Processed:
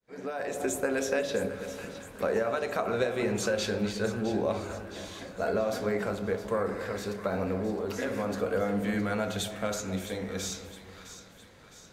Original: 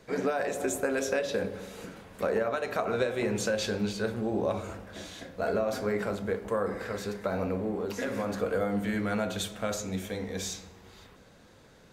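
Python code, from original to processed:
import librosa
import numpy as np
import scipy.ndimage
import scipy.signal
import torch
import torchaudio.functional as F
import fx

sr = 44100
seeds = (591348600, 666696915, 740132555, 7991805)

p1 = fx.fade_in_head(x, sr, length_s=0.65)
y = p1 + fx.echo_split(p1, sr, split_hz=980.0, low_ms=267, high_ms=662, feedback_pct=52, wet_db=-12.0, dry=0)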